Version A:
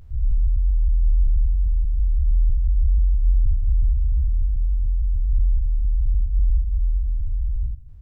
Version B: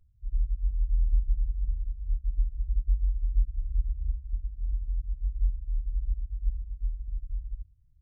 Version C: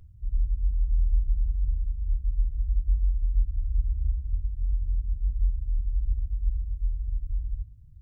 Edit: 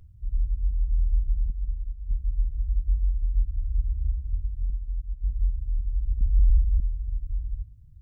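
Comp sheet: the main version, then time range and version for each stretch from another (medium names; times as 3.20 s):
C
1.50–2.11 s: from B
4.70–5.24 s: from B
6.21–6.80 s: from A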